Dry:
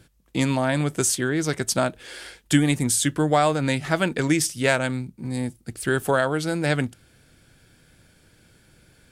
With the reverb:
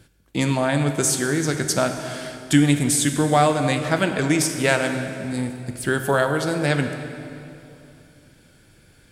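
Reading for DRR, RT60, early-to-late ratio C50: 6.0 dB, 2.8 s, 7.0 dB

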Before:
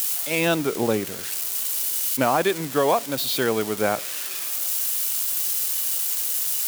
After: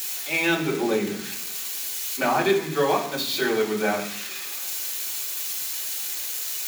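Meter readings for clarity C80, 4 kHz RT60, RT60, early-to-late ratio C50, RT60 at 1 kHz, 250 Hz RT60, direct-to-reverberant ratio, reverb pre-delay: 11.0 dB, 0.85 s, 0.65 s, 8.5 dB, 0.70 s, 0.90 s, −5.0 dB, 3 ms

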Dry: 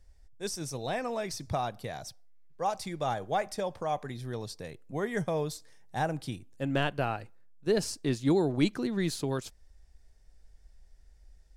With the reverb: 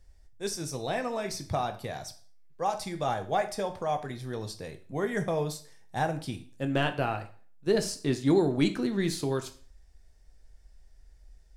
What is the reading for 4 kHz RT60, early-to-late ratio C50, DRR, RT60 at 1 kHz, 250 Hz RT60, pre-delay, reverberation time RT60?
0.40 s, 13.5 dB, 7.0 dB, 0.45 s, 0.45 s, 4 ms, 0.45 s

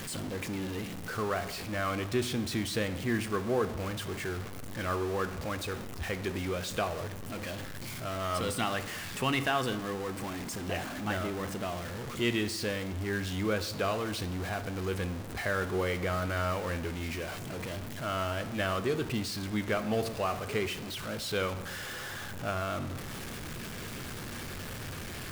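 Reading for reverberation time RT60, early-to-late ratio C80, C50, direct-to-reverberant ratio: 1.1 s, 15.0 dB, 13.0 dB, 10.0 dB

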